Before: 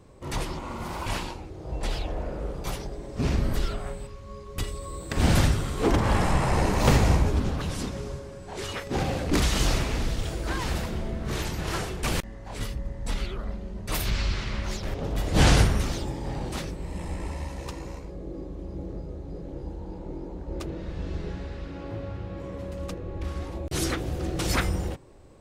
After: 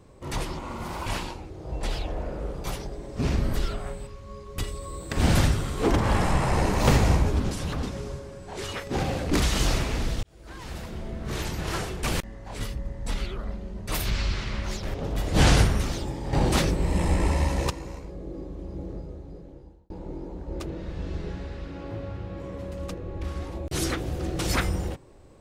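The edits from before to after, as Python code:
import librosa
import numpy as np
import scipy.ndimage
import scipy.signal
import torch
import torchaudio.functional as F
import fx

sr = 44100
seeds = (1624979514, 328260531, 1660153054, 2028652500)

y = fx.edit(x, sr, fx.reverse_span(start_s=7.51, length_s=0.32),
    fx.fade_in_span(start_s=10.23, length_s=1.27),
    fx.clip_gain(start_s=16.33, length_s=1.37, db=10.0),
    fx.fade_out_span(start_s=18.93, length_s=0.97), tone=tone)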